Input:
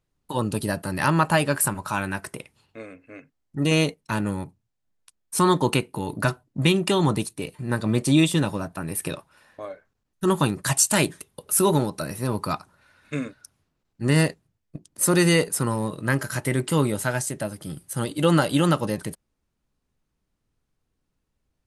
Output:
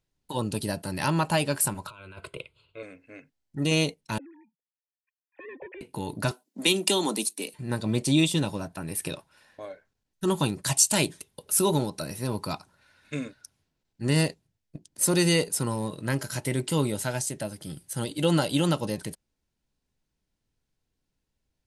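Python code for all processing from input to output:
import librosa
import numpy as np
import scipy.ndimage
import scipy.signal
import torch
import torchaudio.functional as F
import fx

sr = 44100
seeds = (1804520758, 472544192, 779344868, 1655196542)

y = fx.chain(x, sr, fx.lowpass(hz=5100.0, slope=12),
    fx.over_compress(threshold_db=-35.0, ratio=-1.0),
    fx.fixed_phaser(hz=1200.0, stages=8), at=(1.87, 2.83))
y = fx.chain(y, sr, fx.sine_speech(),
    fx.clip_hard(threshold_db=-22.0),
    fx.formant_cascade(vowel='e'), at=(4.18, 5.81))
y = fx.chain(y, sr, fx.steep_highpass(hz=200.0, slope=48),
    fx.high_shelf(hz=5900.0, db=12.0), at=(6.31, 7.54))
y = fx.peak_eq(y, sr, hz=4700.0, db=5.0, octaves=1.8)
y = fx.notch(y, sr, hz=1200.0, q=6.5)
y = fx.dynamic_eq(y, sr, hz=1700.0, q=2.5, threshold_db=-42.0, ratio=4.0, max_db=-6)
y = y * 10.0 ** (-4.0 / 20.0)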